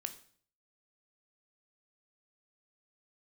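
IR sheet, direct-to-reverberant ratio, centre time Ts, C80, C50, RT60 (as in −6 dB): 8.0 dB, 7 ms, 17.0 dB, 13.0 dB, 0.50 s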